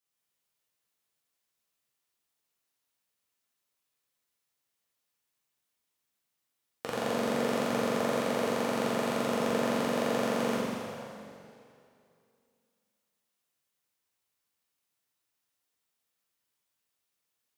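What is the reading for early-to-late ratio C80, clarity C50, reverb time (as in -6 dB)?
-1.0 dB, -2.5 dB, 2.5 s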